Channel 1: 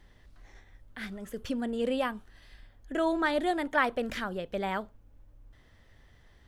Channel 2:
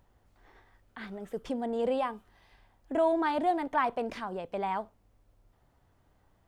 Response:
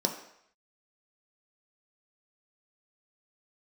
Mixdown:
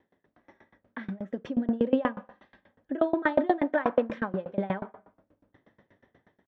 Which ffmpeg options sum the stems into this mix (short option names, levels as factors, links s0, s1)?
-filter_complex "[0:a]volume=0.501,asplit=2[s0][s1];[s1]volume=0.447[s2];[1:a]alimiter=level_in=1.33:limit=0.0631:level=0:latency=1,volume=0.75,adelay=4.2,volume=0.75[s3];[2:a]atrim=start_sample=2205[s4];[s2][s4]afir=irnorm=-1:irlink=0[s5];[s0][s3][s5]amix=inputs=3:normalize=0,highpass=120,lowpass=2100,dynaudnorm=f=250:g=3:m=2.66,aeval=exprs='val(0)*pow(10,-26*if(lt(mod(8.3*n/s,1),2*abs(8.3)/1000),1-mod(8.3*n/s,1)/(2*abs(8.3)/1000),(mod(8.3*n/s,1)-2*abs(8.3)/1000)/(1-2*abs(8.3)/1000))/20)':c=same"